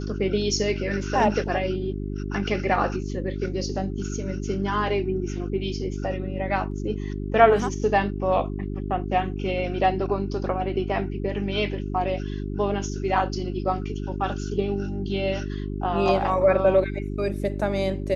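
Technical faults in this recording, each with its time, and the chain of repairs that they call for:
hum 50 Hz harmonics 8 -30 dBFS
6.71 s: dropout 3.1 ms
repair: de-hum 50 Hz, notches 8; interpolate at 6.71 s, 3.1 ms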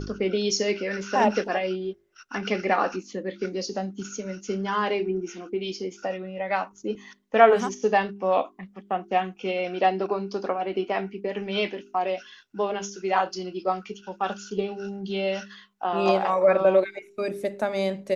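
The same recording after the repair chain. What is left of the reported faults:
nothing left

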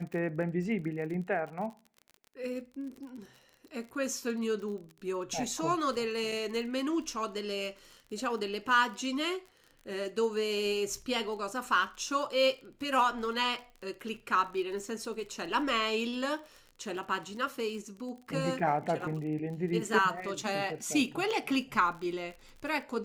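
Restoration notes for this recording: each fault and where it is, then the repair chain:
crackle 41 per s -41 dBFS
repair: de-click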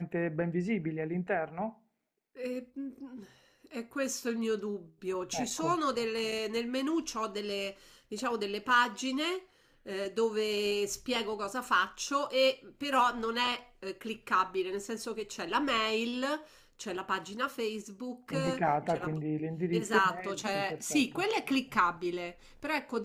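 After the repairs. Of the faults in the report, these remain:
nothing left

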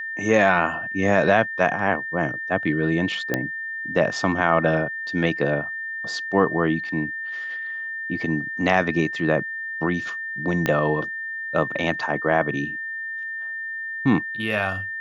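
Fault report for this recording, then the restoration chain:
whine 1.8 kHz -28 dBFS
3.34 s: pop -8 dBFS
10.66 s: pop -8 dBFS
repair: de-click; band-stop 1.8 kHz, Q 30

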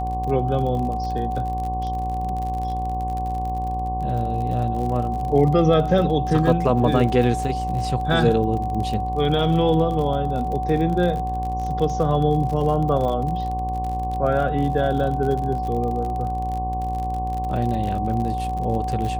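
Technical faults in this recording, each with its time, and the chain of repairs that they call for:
buzz 60 Hz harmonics 19 -28 dBFS
crackle 46 per s -28 dBFS
whine 750 Hz -25 dBFS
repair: de-click; de-hum 60 Hz, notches 19; band-stop 750 Hz, Q 30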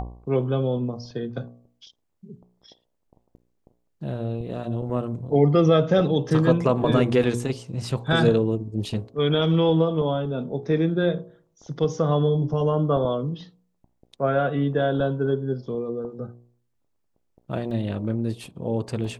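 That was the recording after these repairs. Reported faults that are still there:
nothing left

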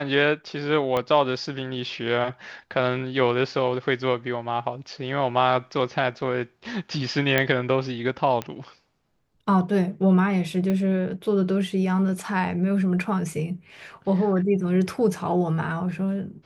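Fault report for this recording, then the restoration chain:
0.97 s: pop -12 dBFS
7.38 s: pop -7 dBFS
8.42 s: pop -14 dBFS
10.70 s: pop -16 dBFS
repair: de-click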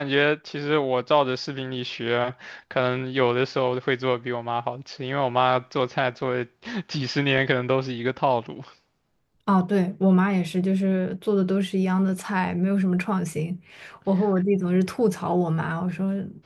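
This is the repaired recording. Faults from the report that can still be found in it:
0.97 s: pop
10.70 s: pop

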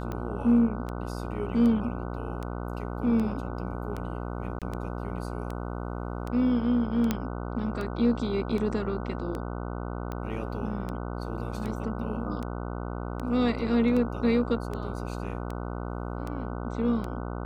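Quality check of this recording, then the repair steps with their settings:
buzz 60 Hz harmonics 25 -34 dBFS
tick 78 rpm -22 dBFS
4.59–4.62 s: dropout 27 ms
7.11 s: pop -12 dBFS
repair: de-click; de-hum 60 Hz, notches 25; interpolate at 4.59 s, 27 ms

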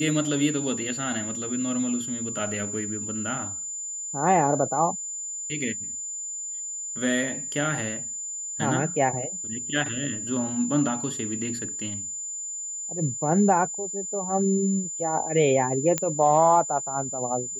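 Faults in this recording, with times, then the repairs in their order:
whine 7.1 kHz -31 dBFS
15.98 s: pop -8 dBFS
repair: de-click; band-stop 7.1 kHz, Q 30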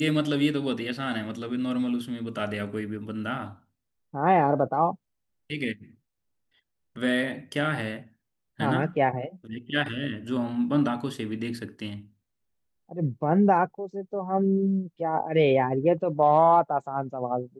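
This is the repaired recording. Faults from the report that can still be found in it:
nothing left

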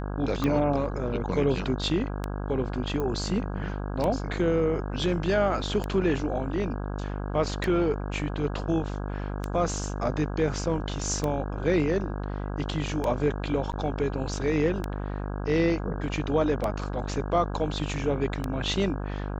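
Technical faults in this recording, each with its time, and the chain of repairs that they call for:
buzz 50 Hz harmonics 33 -32 dBFS
tick 33 1/3 rpm -15 dBFS
3.00 s: pop -19 dBFS
13.72–13.73 s: dropout 8.6 ms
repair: de-click; de-hum 50 Hz, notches 33; interpolate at 13.72 s, 8.6 ms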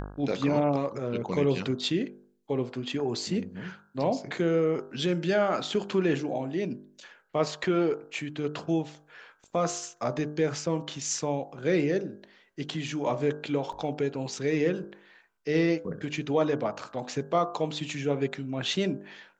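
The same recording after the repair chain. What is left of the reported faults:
3.00 s: pop

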